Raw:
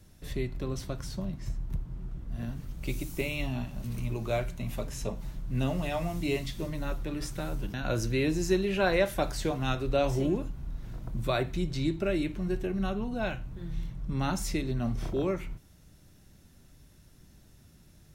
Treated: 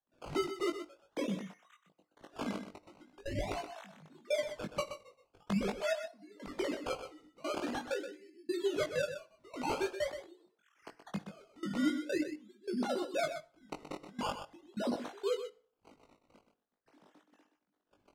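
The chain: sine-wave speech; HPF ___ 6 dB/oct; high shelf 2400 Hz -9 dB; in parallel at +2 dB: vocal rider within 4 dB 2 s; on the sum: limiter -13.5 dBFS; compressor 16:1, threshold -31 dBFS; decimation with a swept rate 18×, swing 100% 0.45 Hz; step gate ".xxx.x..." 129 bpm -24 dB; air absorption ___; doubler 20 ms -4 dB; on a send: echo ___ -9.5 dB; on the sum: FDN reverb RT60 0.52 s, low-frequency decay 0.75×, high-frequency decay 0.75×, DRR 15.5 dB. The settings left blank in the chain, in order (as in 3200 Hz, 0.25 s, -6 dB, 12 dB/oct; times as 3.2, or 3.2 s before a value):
340 Hz, 52 m, 0.125 s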